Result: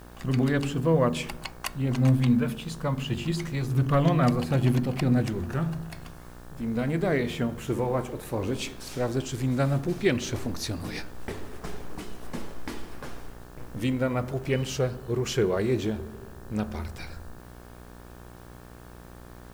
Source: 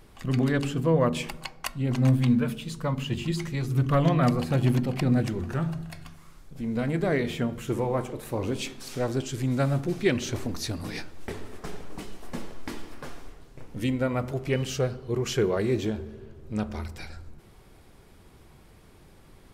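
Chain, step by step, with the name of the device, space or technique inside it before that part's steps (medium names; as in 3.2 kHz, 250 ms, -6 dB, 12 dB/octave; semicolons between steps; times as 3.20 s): video cassette with head-switching buzz (mains buzz 60 Hz, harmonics 30, -47 dBFS -4 dB/octave; white noise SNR 33 dB)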